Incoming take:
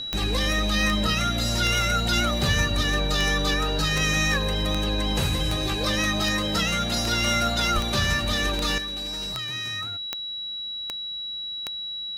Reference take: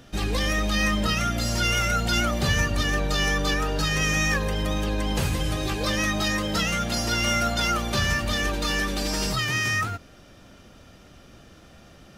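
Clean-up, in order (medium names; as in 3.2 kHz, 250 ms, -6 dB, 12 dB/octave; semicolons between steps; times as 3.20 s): de-click; band-stop 3.9 kHz, Q 30; 7.74–7.86 s: high-pass 140 Hz 24 dB/octave; trim 0 dB, from 8.78 s +10.5 dB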